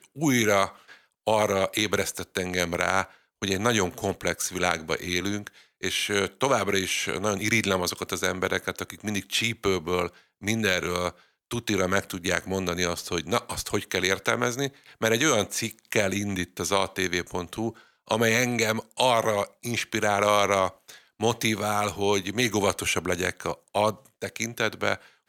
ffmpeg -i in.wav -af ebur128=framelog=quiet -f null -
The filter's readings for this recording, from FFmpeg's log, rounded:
Integrated loudness:
  I:         -26.1 LUFS
  Threshold: -36.2 LUFS
Loudness range:
  LRA:         2.6 LU
  Threshold: -46.3 LUFS
  LRA low:   -27.5 LUFS
  LRA high:  -24.9 LUFS